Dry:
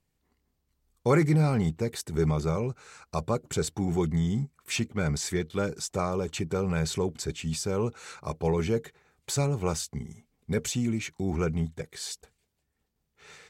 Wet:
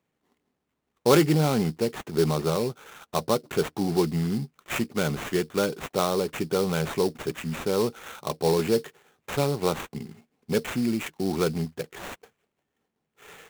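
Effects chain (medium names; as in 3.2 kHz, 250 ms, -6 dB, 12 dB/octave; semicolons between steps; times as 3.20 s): high-pass 210 Hz 12 dB/octave; treble shelf 4.4 kHz -11 dB; sample-rate reducer 4.9 kHz, jitter 20%; trim +5.5 dB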